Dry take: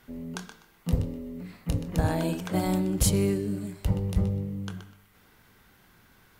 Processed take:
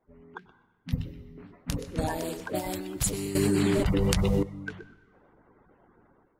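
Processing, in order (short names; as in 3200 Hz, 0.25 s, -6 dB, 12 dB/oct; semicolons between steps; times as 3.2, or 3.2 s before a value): bin magnitudes rounded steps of 30 dB; low-pass opened by the level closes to 640 Hz, open at -24.5 dBFS; 0.38–1.38 graphic EQ 125/500/1000/8000 Hz +9/-10/-10/-9 dB; harmonic-percussive split percussive +9 dB; tone controls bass -7 dB, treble 0 dB; AGC gain up to 12.5 dB; on a send at -16.5 dB: reverb RT60 1.3 s, pre-delay 88 ms; 3.35–4.43 on the sum: fast leveller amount 100%; gain -12.5 dB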